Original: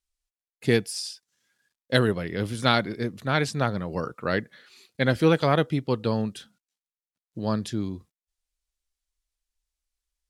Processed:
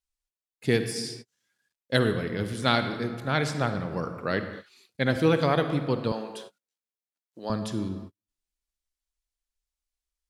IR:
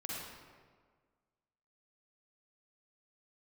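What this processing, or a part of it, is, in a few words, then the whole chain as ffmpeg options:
keyed gated reverb: -filter_complex "[0:a]asplit=3[a][b][c];[1:a]atrim=start_sample=2205[d];[b][d]afir=irnorm=-1:irlink=0[e];[c]apad=whole_len=453951[f];[e][f]sidechaingate=range=-51dB:threshold=-47dB:ratio=16:detection=peak,volume=-5.5dB[g];[a][g]amix=inputs=2:normalize=0,asettb=1/sr,asplit=3[h][i][j];[h]atrim=end=6.124[k];[i]atrim=start=6.12:end=7.5,asetpts=PTS-STARTPTS,afade=t=in:d=0.004:c=qsin,afade=t=out:st=1.376:d=0.004:c=qsin,highpass=400[l];[j]atrim=start=7.496[m];[k][l]acrossfade=d=0.004:c1=hsin:c2=qsin[n];[n][m]acrossfade=d=0.004:c1=qsin:c2=hsin,volume=-4.5dB"

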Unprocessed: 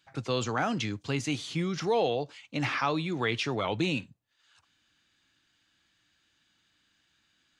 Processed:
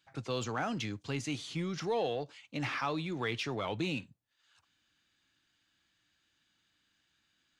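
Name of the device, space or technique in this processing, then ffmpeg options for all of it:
parallel distortion: -filter_complex "[0:a]asplit=2[a][b];[b]asoftclip=type=hard:threshold=-30.5dB,volume=-10dB[c];[a][c]amix=inputs=2:normalize=0,volume=-7dB"

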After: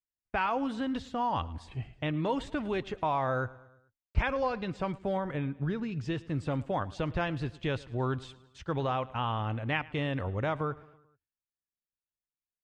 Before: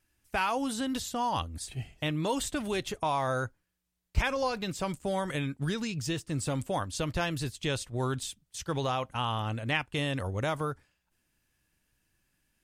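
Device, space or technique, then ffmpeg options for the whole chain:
hearing-loss simulation: -filter_complex "[0:a]lowpass=2.4k,agate=range=-33dB:threshold=-56dB:ratio=3:detection=peak,asettb=1/sr,asplit=3[a][b][c];[a]atrim=end=5.174[d];[b]atrim=start=5.17:end=5.92,asetpts=PTS-STARTPTS,afade=t=in:d=0.004:c=qsin,afade=t=out:st=0.746:d=0.004:c=qsin,highshelf=f=2k:g=-9[e];[c]atrim=start=5.916[f];[d][e]acrossfade=d=0.004:c1=hsin:c2=qsin[g];[g][f]acrossfade=d=0.004:c1=qsin:c2=hsin,aecho=1:1:109|218|327|436:0.0891|0.0481|0.026|0.014"

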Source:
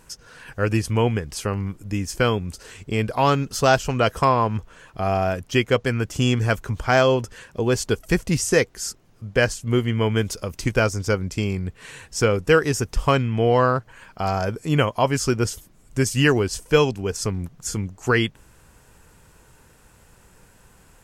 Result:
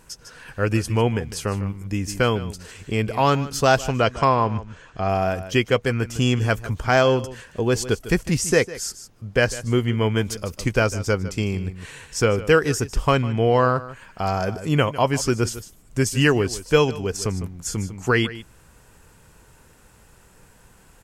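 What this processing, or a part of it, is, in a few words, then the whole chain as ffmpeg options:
ducked delay: -filter_complex "[0:a]asplit=3[a][b][c];[b]adelay=152,volume=-8.5dB[d];[c]apad=whole_len=934478[e];[d][e]sidechaincompress=threshold=-24dB:ratio=6:attack=30:release=700[f];[a][f]amix=inputs=2:normalize=0,asettb=1/sr,asplit=3[g][h][i];[g]atrim=end=4.044[j];[h]atrim=start=4.04:end=5.09,asetpts=PTS-STARTPTS,afade=t=in:d=0.004:c=qsin,afade=t=out:st=1.046:d=0.004:c=qsin,lowpass=f=7.3k:w=0.5412,lowpass=f=7.3k:w=1.3066[k];[i]atrim=start=5.086[l];[j][k]acrossfade=d=0.004:c1=hsin:c2=qsin[m];[m][l]acrossfade=d=0.004:c1=qsin:c2=hsin"

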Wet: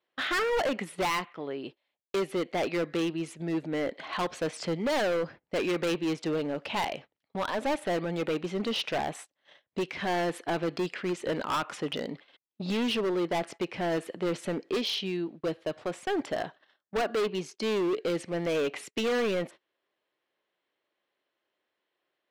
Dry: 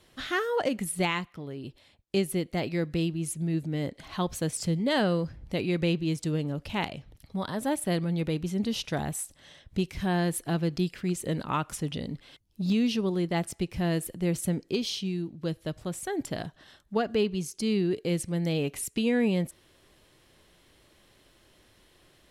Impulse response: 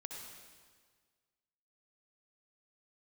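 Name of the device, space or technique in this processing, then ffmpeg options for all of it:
walkie-talkie: -af "highpass=430,lowpass=2.9k,asoftclip=type=hard:threshold=-34dB,agate=range=-26dB:threshold=-53dB:ratio=16:detection=peak,volume=9dB"

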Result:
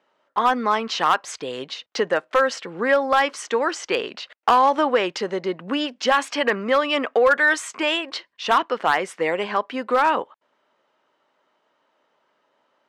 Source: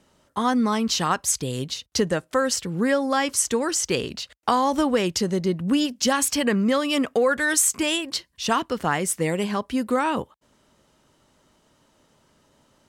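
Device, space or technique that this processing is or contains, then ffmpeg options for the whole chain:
walkie-talkie: -af "highpass=540,lowpass=2.5k,asoftclip=type=hard:threshold=-16.5dB,agate=range=-8dB:threshold=-56dB:ratio=16:detection=peak,volume=7dB"

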